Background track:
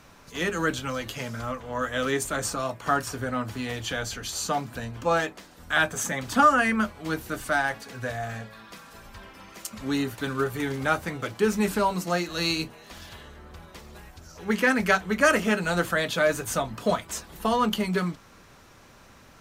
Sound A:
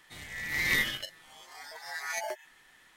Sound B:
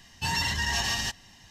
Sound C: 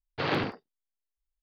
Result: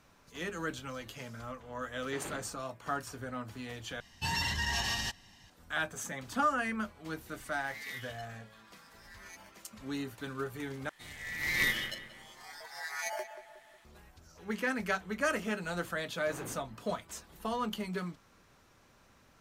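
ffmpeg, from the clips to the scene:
-filter_complex "[3:a]asplit=2[s0][s1];[1:a]asplit=2[s2][s3];[0:a]volume=0.282[s4];[2:a]equalizer=f=6600:w=2.1:g=-3[s5];[s2]highpass=1200[s6];[s3]asplit=2[s7][s8];[s8]adelay=181,lowpass=f=2000:p=1,volume=0.316,asplit=2[s9][s10];[s10]adelay=181,lowpass=f=2000:p=1,volume=0.52,asplit=2[s11][s12];[s12]adelay=181,lowpass=f=2000:p=1,volume=0.52,asplit=2[s13][s14];[s14]adelay=181,lowpass=f=2000:p=1,volume=0.52,asplit=2[s15][s16];[s16]adelay=181,lowpass=f=2000:p=1,volume=0.52,asplit=2[s17][s18];[s18]adelay=181,lowpass=f=2000:p=1,volume=0.52[s19];[s7][s9][s11][s13][s15][s17][s19]amix=inputs=7:normalize=0[s20];[s1]lowpass=f=1300:p=1[s21];[s4]asplit=3[s22][s23][s24];[s22]atrim=end=4.004[s25];[s5]atrim=end=1.5,asetpts=PTS-STARTPTS,volume=0.596[s26];[s23]atrim=start=5.496:end=10.894[s27];[s20]atrim=end=2.96,asetpts=PTS-STARTPTS,volume=0.75[s28];[s24]atrim=start=13.846[s29];[s0]atrim=end=1.42,asetpts=PTS-STARTPTS,volume=0.158,afade=t=in:d=0.004:c=hsin,afade=t=out:st=1.416:d=0.004:c=hsin,adelay=1930[s30];[s6]atrim=end=2.96,asetpts=PTS-STARTPTS,volume=0.168,afade=t=in:d=0.004:c=hsin,afade=t=out:st=2.956:d=0.004:c=hsin,adelay=7160[s31];[s21]atrim=end=1.42,asetpts=PTS-STARTPTS,volume=0.168,afade=t=in:d=0.004:c=hsin,afade=t=out:st=1.416:d=0.004:c=hsin,adelay=16090[s32];[s25][s26]acrossfade=d=0.004:c1=hsin:c2=hsin[s33];[s33][s27]acrossfade=d=0.004:c1=hsin:c2=hsin[s34];[s34][s28]acrossfade=d=0.004:c1=hsin:c2=hsin[s35];[s35][s29]acrossfade=d=0.004:c1=hsin:c2=hsin[s36];[s36][s30][s31][s32]amix=inputs=4:normalize=0"

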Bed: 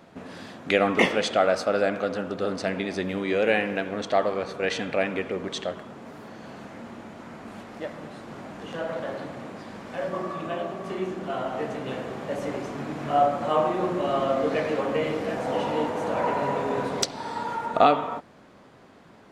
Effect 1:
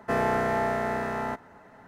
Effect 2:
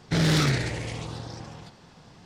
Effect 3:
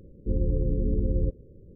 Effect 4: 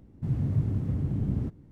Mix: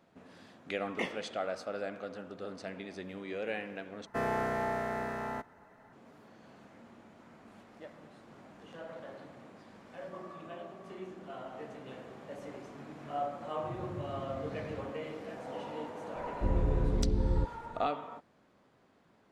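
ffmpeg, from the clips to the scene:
-filter_complex "[0:a]volume=0.188[s0];[4:a]highpass=74[s1];[s0]asplit=2[s2][s3];[s2]atrim=end=4.064[s4];[1:a]atrim=end=1.87,asetpts=PTS-STARTPTS,volume=0.447[s5];[s3]atrim=start=5.926[s6];[s1]atrim=end=1.71,asetpts=PTS-STARTPTS,volume=0.15,afade=t=in:d=0.004:c=hsin,afade=t=out:st=1.706:d=0.004:c=hsin,adelay=13410[s7];[3:a]atrim=end=1.75,asetpts=PTS-STARTPTS,volume=0.631,afade=t=in:d=0.004:c=hsin,afade=t=out:st=1.746:d=0.004:c=hsin,adelay=16150[s8];[s4][s5]acrossfade=d=0.004:c1=hsin:c2=hsin[s9];[s9][s6]acrossfade=d=0.004:c1=hsin:c2=hsin[s10];[s10][s7][s8]amix=inputs=3:normalize=0"

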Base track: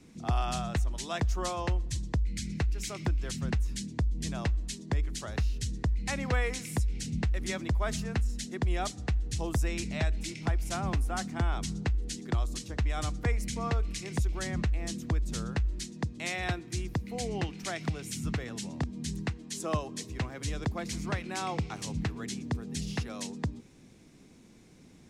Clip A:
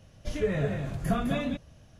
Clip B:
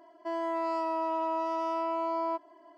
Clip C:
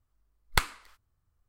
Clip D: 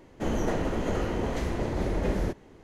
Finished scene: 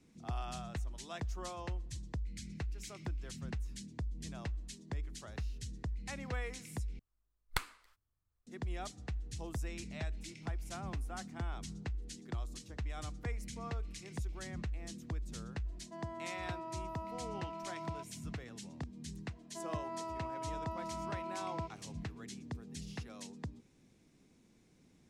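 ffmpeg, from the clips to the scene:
-filter_complex "[2:a]asplit=2[s0][s1];[0:a]volume=0.299,asplit=2[s2][s3];[s2]atrim=end=6.994[s4];[3:a]atrim=end=1.48,asetpts=PTS-STARTPTS,volume=0.299[s5];[s3]atrim=start=8.466[s6];[s0]atrim=end=2.77,asetpts=PTS-STARTPTS,volume=0.2,afade=t=in:d=0.004:c=hsin,afade=t=out:st=2.766:d=0.004:c=hsin,adelay=15660[s7];[s1]atrim=end=2.77,asetpts=PTS-STARTPTS,volume=0.266,afade=t=in:d=0.004:c=hsin,afade=t=out:st=2.766:d=0.004:c=hsin,adelay=19300[s8];[s4][s5]acrossfade=d=0.004:c1=hsin:c2=hsin[s9];[s9][s6]acrossfade=d=0.004:c1=hsin:c2=hsin[s10];[s10][s7][s8]amix=inputs=3:normalize=0"

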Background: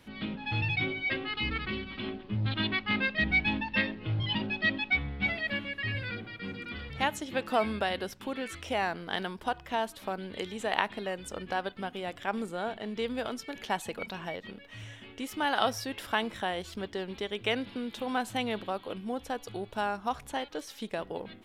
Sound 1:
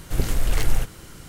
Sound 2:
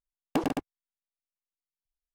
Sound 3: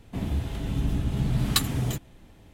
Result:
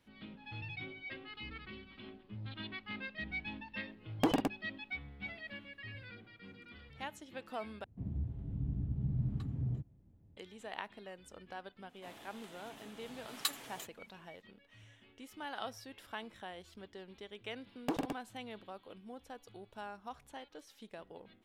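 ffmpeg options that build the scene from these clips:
-filter_complex "[2:a]asplit=2[s0][s1];[3:a]asplit=2[s2][s3];[0:a]volume=0.188[s4];[s2]bandpass=f=110:t=q:w=1:csg=0[s5];[s3]highpass=640[s6];[s4]asplit=2[s7][s8];[s7]atrim=end=7.844[s9];[s5]atrim=end=2.53,asetpts=PTS-STARTPTS,volume=0.422[s10];[s8]atrim=start=10.366[s11];[s0]atrim=end=2.14,asetpts=PTS-STARTPTS,volume=0.794,afade=t=in:d=0.004:c=hsin,afade=t=out:st=2.136:d=0.004:c=hsin,adelay=3880[s12];[s6]atrim=end=2.53,asetpts=PTS-STARTPTS,volume=0.299,afade=t=in:d=0.004:c=hsin,afade=t=out:st=2.526:d=0.004:c=hsin,adelay=11890[s13];[s1]atrim=end=2.14,asetpts=PTS-STARTPTS,volume=0.422,afade=t=in:d=0.004:c=hsin,afade=t=out:st=2.136:d=0.004:c=hsin,adelay=17530[s14];[s9][s10]acrossfade=d=0.004:c1=hsin:c2=hsin[s15];[s15][s11]acrossfade=d=0.004:c1=hsin:c2=hsin[s16];[s16][s12][s13][s14]amix=inputs=4:normalize=0"

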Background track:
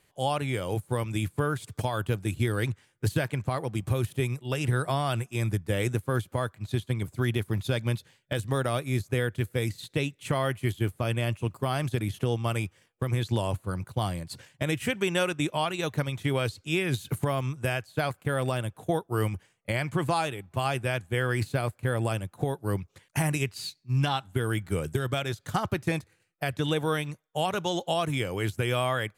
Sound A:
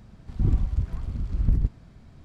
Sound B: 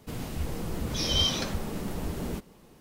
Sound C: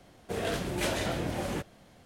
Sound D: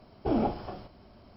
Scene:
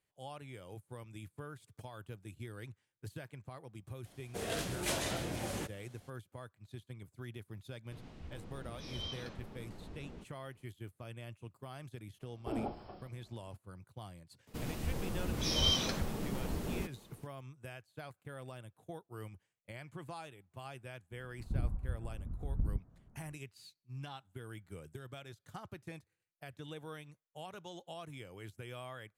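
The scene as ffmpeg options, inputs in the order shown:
-filter_complex "[2:a]asplit=2[s0][s1];[0:a]volume=0.106[s2];[3:a]equalizer=f=9800:t=o:w=2.3:g=8[s3];[s0]lowpass=4200[s4];[1:a]lowpass=f=1400:w=0.5412,lowpass=f=1400:w=1.3066[s5];[s3]atrim=end=2.05,asetpts=PTS-STARTPTS,volume=0.447,afade=t=in:d=0.004:c=hsin,afade=t=out:st=2.046:d=0.004:c=hsin,adelay=178605S[s6];[s4]atrim=end=2.8,asetpts=PTS-STARTPTS,volume=0.15,afade=t=in:d=0.004:c=hsin,afade=t=out:st=2.796:d=0.004:c=hsin,adelay=7840[s7];[4:a]atrim=end=1.36,asetpts=PTS-STARTPTS,volume=0.282,afade=t=in:d=0.004:c=hsin,afade=t=out:st=1.356:d=0.004:c=hsin,adelay=12210[s8];[s1]atrim=end=2.8,asetpts=PTS-STARTPTS,volume=0.596,afade=t=in:d=0.004:c=hsin,afade=t=out:st=2.796:d=0.004:c=hsin,adelay=14470[s9];[s5]atrim=end=2.24,asetpts=PTS-STARTPTS,volume=0.237,afade=t=in:d=0.004:c=hsin,afade=t=out:st=2.236:d=0.004:c=hsin,adelay=21110[s10];[s2][s6][s7][s8][s9][s10]amix=inputs=6:normalize=0"

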